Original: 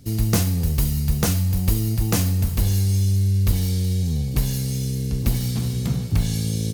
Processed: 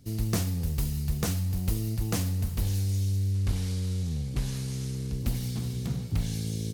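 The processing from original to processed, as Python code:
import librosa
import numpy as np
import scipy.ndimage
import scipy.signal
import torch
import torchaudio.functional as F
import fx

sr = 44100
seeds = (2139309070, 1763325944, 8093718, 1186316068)

y = fx.cvsd(x, sr, bps=64000, at=(3.34, 5.11))
y = fx.doppler_dist(y, sr, depth_ms=0.33)
y = y * librosa.db_to_amplitude(-8.0)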